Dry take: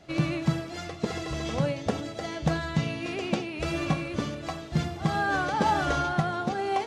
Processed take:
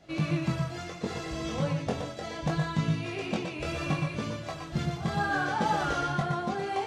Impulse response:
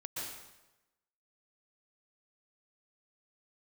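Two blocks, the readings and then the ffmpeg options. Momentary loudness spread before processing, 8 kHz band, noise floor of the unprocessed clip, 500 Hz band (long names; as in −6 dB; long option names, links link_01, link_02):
8 LU, −2.0 dB, −40 dBFS, −3.0 dB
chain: -filter_complex "[0:a]flanger=delay=18.5:depth=4.6:speed=0.7[link_01];[1:a]atrim=start_sample=2205,afade=type=out:start_time=0.17:duration=0.01,atrim=end_sample=7938[link_02];[link_01][link_02]afir=irnorm=-1:irlink=0,volume=5.5dB"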